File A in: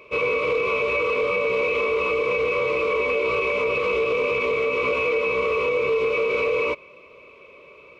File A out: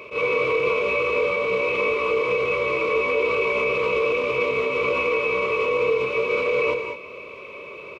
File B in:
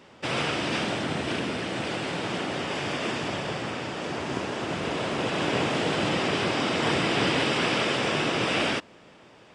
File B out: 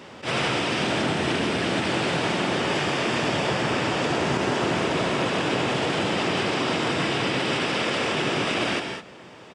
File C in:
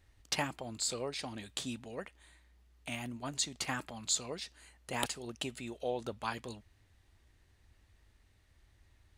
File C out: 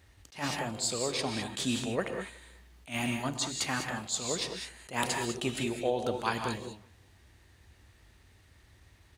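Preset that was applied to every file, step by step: HPF 63 Hz; in parallel at +2 dB: compressor, threshold -32 dBFS; on the sum: limiter -16 dBFS; vocal rider within 4 dB 0.5 s; outdoor echo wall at 64 m, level -30 dB; non-linear reverb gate 0.23 s rising, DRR 4.5 dB; attack slew limiter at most 220 dB/s

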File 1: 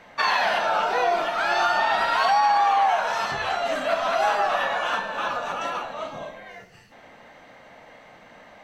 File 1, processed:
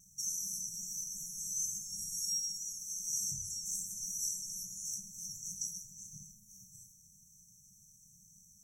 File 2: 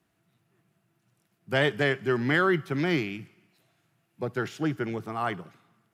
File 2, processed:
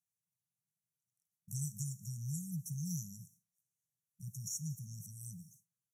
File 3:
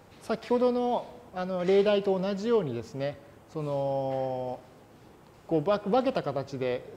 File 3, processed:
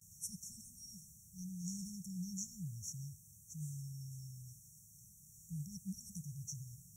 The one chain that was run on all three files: gate with hold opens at -46 dBFS; brick-wall FIR band-stop 200–5500 Hz; tilt shelf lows -9.5 dB; gain +2 dB

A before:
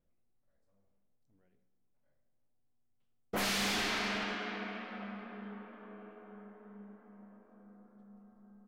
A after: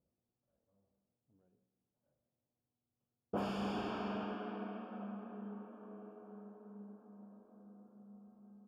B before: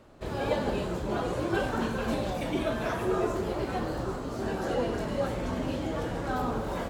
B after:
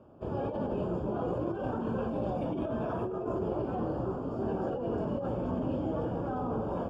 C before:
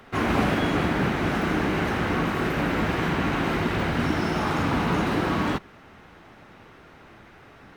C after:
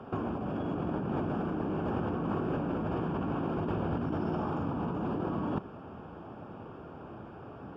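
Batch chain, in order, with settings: HPF 77 Hz 12 dB/oct; negative-ratio compressor -31 dBFS, ratio -1; running mean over 22 samples

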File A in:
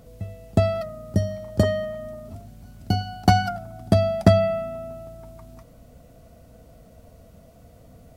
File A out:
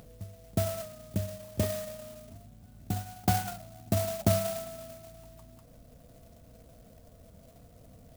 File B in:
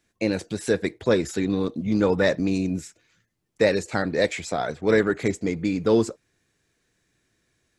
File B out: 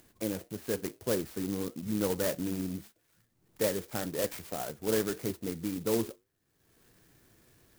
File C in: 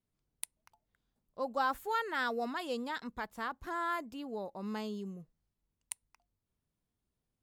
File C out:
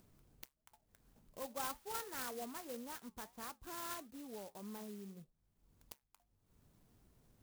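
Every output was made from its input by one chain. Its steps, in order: high shelf 8300 Hz -7 dB; upward compressor, threshold -36 dBFS; flange 1.7 Hz, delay 6 ms, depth 4.1 ms, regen -79%; clock jitter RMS 0.11 ms; gain -5.5 dB

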